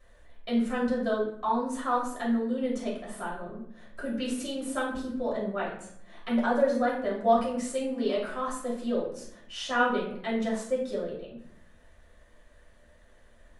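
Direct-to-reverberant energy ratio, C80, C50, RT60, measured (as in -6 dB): -6.5 dB, 8.5 dB, 4.5 dB, 0.65 s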